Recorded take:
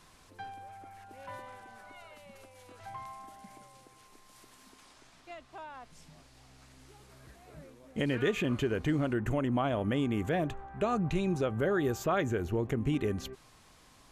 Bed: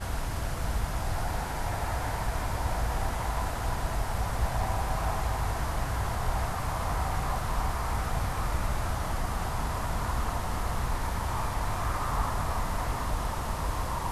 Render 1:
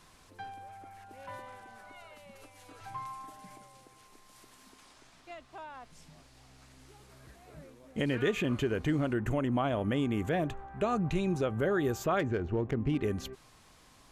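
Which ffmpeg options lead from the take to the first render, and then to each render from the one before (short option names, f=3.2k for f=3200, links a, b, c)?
-filter_complex "[0:a]asettb=1/sr,asplit=3[a][b][c];[a]atrim=end=2.414[d];[b]atrim=start=2.41:end=3.56,asetpts=PTS-STARTPTS,afade=t=in:d=0.004:c=qsin,afade=t=out:st=1.146:d=0.004:c=qsin,aecho=1:1:6.8:0.79,atrim=end_sample=50715[e];[c]atrim=start=3.556[f];[d][e]acrossfade=d=0.004:c1=hsin:c2=qsin[g];[g][f]acrossfade=d=0.004:c1=qsin:c2=hsin,asettb=1/sr,asplit=3[h][i][j];[h]atrim=end=12.194[k];[i]atrim=start=12.19:end=13.03,asetpts=PTS-STARTPTS,afade=t=in:d=0.004:c=qsin,afade=t=out:st=0.836:d=0.004:c=qsin,adynamicsmooth=sensitivity=7:basefreq=2.3k[l];[j]atrim=start=13.026[m];[k][l]acrossfade=d=0.004:c1=hsin:c2=qsin[n];[n][m]acrossfade=d=0.004:c1=qsin:c2=hsin"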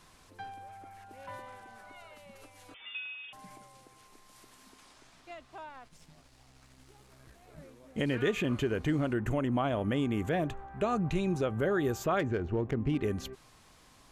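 -filter_complex "[0:a]asettb=1/sr,asplit=3[a][b][c];[a]atrim=end=2.744[d];[b]atrim=start=2.74:end=3.33,asetpts=PTS-STARTPTS,afade=t=in:d=0.004:c=qsin,afade=t=out:st=0.586:d=0.004:c=qsin,lowpass=f=3.1k:t=q:w=0.5098,lowpass=f=3.1k:t=q:w=0.6013,lowpass=f=3.1k:t=q:w=0.9,lowpass=f=3.1k:t=q:w=2.563,afreqshift=-3600[e];[c]atrim=start=3.326[f];[d][e]acrossfade=d=0.004:c1=hsin:c2=qsin[g];[g][f]acrossfade=d=0.004:c1=qsin:c2=hsin,asettb=1/sr,asplit=3[h][i][j];[h]atrim=end=5.694[k];[i]atrim=start=5.69:end=7.58,asetpts=PTS-STARTPTS,afade=t=in:d=0.004:c=qsin,afade=t=out:st=1.886:d=0.004:c=qsin,aeval=exprs='if(lt(val(0),0),0.447*val(0),val(0))':c=same[l];[j]atrim=start=7.576[m];[k][l]acrossfade=d=0.004:c1=hsin:c2=qsin[n];[n][m]acrossfade=d=0.004:c1=qsin:c2=hsin"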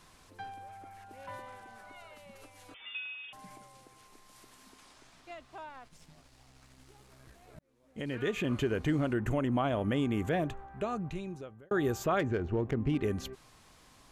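-filter_complex "[0:a]asplit=3[a][b][c];[a]atrim=end=7.59,asetpts=PTS-STARTPTS,afade=t=out:st=7.586:d=0.004:c=hsin[d];[b]atrim=start=7.59:end=11.71,asetpts=PTS-STARTPTS,afade=t=in:d=1,afade=t=out:st=2.74:d=1.38[e];[c]atrim=start=11.71,asetpts=PTS-STARTPTS,afade=t=in:d=0.004:c=hsin[f];[d][e][f]concat=n=3:v=0:a=1"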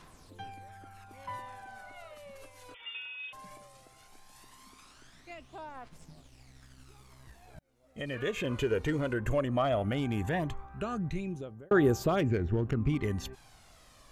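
-af "asoftclip=type=hard:threshold=-21.5dB,aphaser=in_gain=1:out_gain=1:delay=2.2:decay=0.51:speed=0.17:type=triangular"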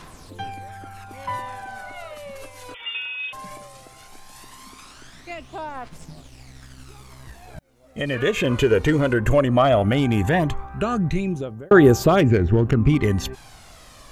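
-af "volume=12dB"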